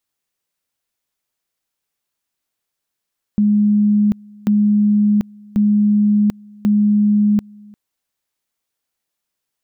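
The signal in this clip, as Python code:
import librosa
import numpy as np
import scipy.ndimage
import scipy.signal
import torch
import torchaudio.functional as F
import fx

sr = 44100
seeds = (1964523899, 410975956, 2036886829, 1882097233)

y = fx.two_level_tone(sr, hz=208.0, level_db=-10.5, drop_db=27.0, high_s=0.74, low_s=0.35, rounds=4)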